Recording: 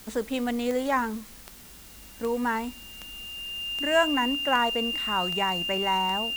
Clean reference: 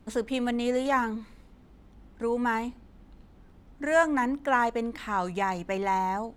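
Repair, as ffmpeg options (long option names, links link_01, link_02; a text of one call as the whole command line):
ffmpeg -i in.wav -af "adeclick=threshold=4,bandreject=frequency=2800:width=30,afwtdn=0.0035" out.wav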